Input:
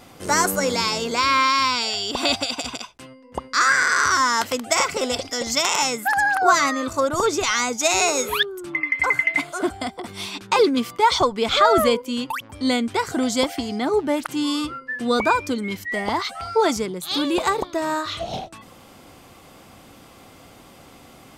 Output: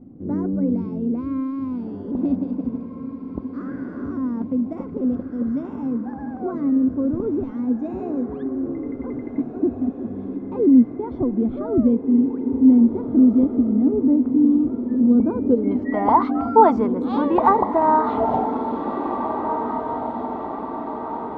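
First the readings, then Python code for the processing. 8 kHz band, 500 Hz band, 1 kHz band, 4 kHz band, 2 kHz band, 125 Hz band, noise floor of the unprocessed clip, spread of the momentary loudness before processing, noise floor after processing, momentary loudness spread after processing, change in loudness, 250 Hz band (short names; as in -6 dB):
under -40 dB, -1.0 dB, -1.0 dB, under -30 dB, under -20 dB, +5.0 dB, -47 dBFS, 10 LU, -34 dBFS, 13 LU, 0.0 dB, +9.5 dB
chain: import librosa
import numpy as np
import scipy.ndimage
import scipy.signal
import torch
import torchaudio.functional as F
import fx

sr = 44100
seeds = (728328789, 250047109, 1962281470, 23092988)

y = fx.filter_sweep_lowpass(x, sr, from_hz=260.0, to_hz=950.0, start_s=15.24, end_s=15.9, q=3.0)
y = fx.echo_diffused(y, sr, ms=1757, feedback_pct=57, wet_db=-7.5)
y = F.gain(torch.from_numpy(y), 1.0).numpy()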